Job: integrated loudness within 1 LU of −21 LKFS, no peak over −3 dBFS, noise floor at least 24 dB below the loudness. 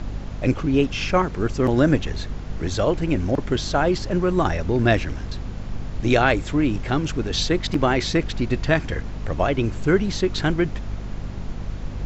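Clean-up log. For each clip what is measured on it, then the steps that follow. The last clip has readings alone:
mains hum 50 Hz; hum harmonics up to 250 Hz; level of the hum −30 dBFS; background noise floor −33 dBFS; target noise floor −47 dBFS; integrated loudness −22.5 LKFS; sample peak −3.0 dBFS; target loudness −21.0 LKFS
→ hum removal 50 Hz, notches 5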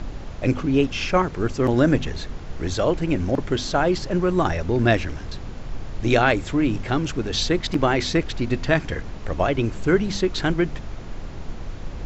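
mains hum none found; background noise floor −34 dBFS; target noise floor −47 dBFS
→ noise reduction from a noise print 13 dB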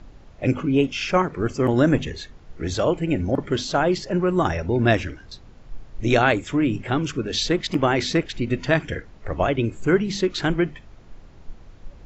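background noise floor −46 dBFS; target noise floor −47 dBFS
→ noise reduction from a noise print 6 dB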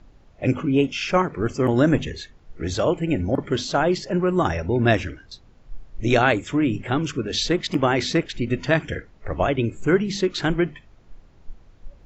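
background noise floor −52 dBFS; integrated loudness −22.5 LKFS; sample peak −3.5 dBFS; target loudness −21.0 LKFS
→ level +1.5 dB
brickwall limiter −3 dBFS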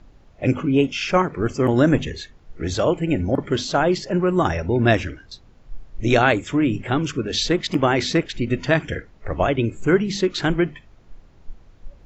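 integrated loudness −21.0 LKFS; sample peak −3.0 dBFS; background noise floor −50 dBFS

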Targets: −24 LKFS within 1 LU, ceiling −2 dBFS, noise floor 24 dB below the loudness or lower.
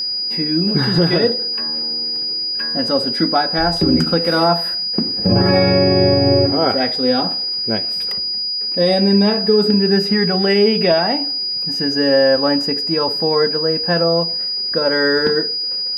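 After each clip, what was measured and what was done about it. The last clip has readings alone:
crackle rate 22 per second; interfering tone 4,900 Hz; level of the tone −19 dBFS; integrated loudness −15.5 LKFS; sample peak −4.0 dBFS; target loudness −24.0 LKFS
→ click removal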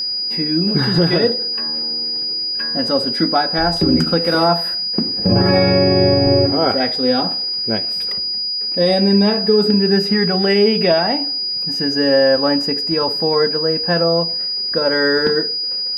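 crackle rate 0.063 per second; interfering tone 4,900 Hz; level of the tone −19 dBFS
→ notch filter 4,900 Hz, Q 30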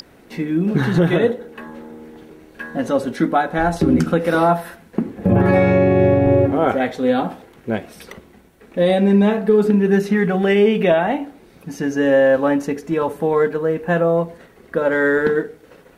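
interfering tone none found; integrated loudness −17.5 LKFS; sample peak −5.0 dBFS; target loudness −24.0 LKFS
→ level −6.5 dB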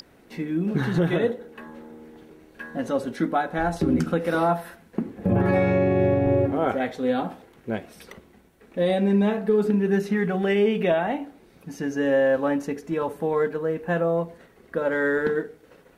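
integrated loudness −24.0 LKFS; sample peak −11.5 dBFS; background noise floor −55 dBFS

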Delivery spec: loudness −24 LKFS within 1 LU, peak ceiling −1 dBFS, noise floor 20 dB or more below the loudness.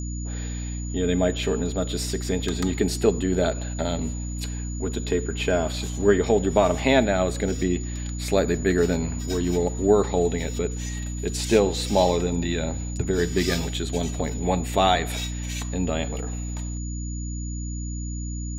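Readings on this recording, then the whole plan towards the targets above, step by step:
mains hum 60 Hz; hum harmonics up to 300 Hz; level of the hum −28 dBFS; interfering tone 6,900 Hz; level of the tone −39 dBFS; integrated loudness −25.0 LKFS; sample peak −4.5 dBFS; target loudness −24.0 LKFS
→ hum removal 60 Hz, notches 5
notch filter 6,900 Hz, Q 30
level +1 dB

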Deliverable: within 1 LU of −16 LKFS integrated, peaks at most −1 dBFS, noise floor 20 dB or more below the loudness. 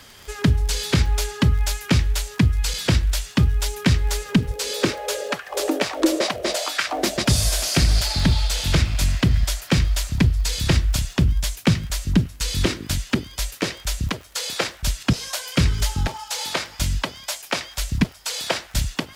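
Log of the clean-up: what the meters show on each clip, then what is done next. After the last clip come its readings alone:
crackle rate 32 per second; integrated loudness −22.5 LKFS; sample peak −4.5 dBFS; target loudness −16.0 LKFS
→ click removal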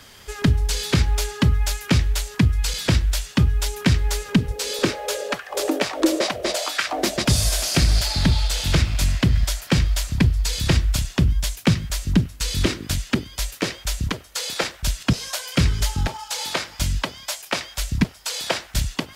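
crackle rate 0.16 per second; integrated loudness −22.5 LKFS; sample peak −4.5 dBFS; target loudness −16.0 LKFS
→ level +6.5 dB
brickwall limiter −1 dBFS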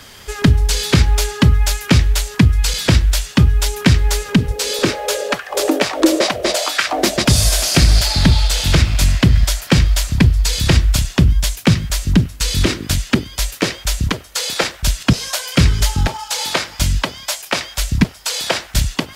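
integrated loudness −16.5 LKFS; sample peak −1.0 dBFS; background noise floor −38 dBFS

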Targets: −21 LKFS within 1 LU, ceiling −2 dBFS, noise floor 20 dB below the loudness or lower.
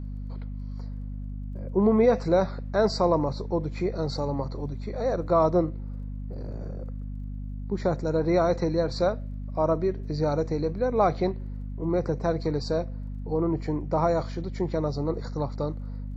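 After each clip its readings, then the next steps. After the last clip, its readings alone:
crackle rate 15 per second; mains hum 50 Hz; hum harmonics up to 250 Hz; level of the hum −32 dBFS; integrated loudness −27.0 LKFS; sample peak −9.5 dBFS; target loudness −21.0 LKFS
→ click removal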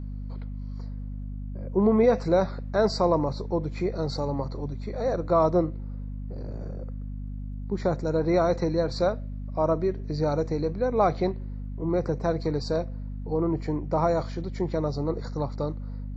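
crackle rate 0 per second; mains hum 50 Hz; hum harmonics up to 250 Hz; level of the hum −32 dBFS
→ mains-hum notches 50/100/150/200/250 Hz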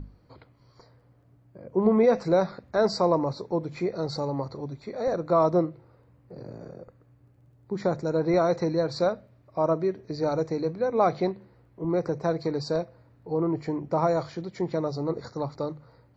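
mains hum none found; integrated loudness −27.0 LKFS; sample peak −10.0 dBFS; target loudness −21.0 LKFS
→ level +6 dB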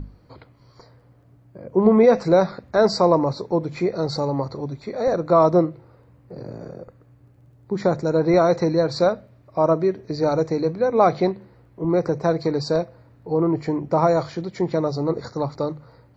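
integrated loudness −21.0 LKFS; sample peak −4.0 dBFS; background noise floor −54 dBFS

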